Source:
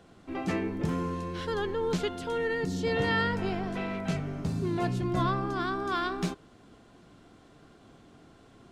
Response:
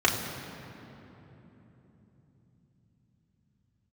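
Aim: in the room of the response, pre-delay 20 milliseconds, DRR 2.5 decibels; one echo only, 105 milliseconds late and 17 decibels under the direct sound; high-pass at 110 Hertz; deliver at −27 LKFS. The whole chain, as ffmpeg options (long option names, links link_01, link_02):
-filter_complex "[0:a]highpass=110,aecho=1:1:105:0.141,asplit=2[link_01][link_02];[1:a]atrim=start_sample=2205,adelay=20[link_03];[link_02][link_03]afir=irnorm=-1:irlink=0,volume=-18dB[link_04];[link_01][link_04]amix=inputs=2:normalize=0,volume=1.5dB"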